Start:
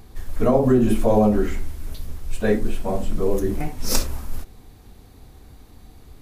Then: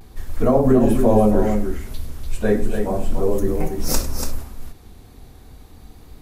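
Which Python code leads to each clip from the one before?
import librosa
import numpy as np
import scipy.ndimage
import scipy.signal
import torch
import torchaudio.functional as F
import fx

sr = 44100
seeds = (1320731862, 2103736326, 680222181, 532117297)

y = fx.echo_multitap(x, sr, ms=(101, 289), db=(-15.0, -6.5))
y = fx.vibrato(y, sr, rate_hz=0.35, depth_cents=28.0)
y = fx.dynamic_eq(y, sr, hz=3000.0, q=0.77, threshold_db=-43.0, ratio=4.0, max_db=-5)
y = y * librosa.db_to_amplitude(1.5)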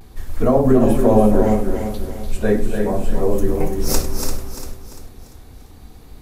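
y = fx.echo_feedback(x, sr, ms=344, feedback_pct=41, wet_db=-9.0)
y = y * librosa.db_to_amplitude(1.0)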